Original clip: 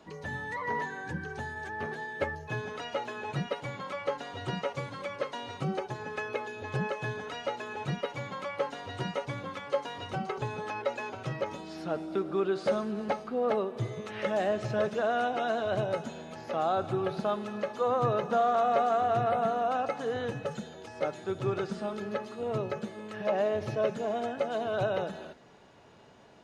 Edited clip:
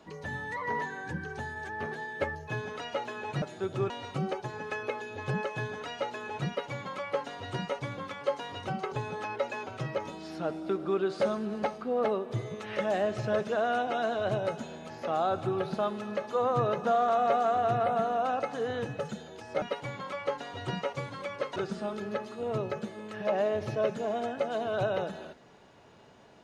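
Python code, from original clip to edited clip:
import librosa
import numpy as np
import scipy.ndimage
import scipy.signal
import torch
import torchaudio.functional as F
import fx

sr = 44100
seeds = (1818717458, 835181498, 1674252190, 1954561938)

y = fx.edit(x, sr, fx.swap(start_s=3.42, length_s=1.94, other_s=21.08, other_length_s=0.48), tone=tone)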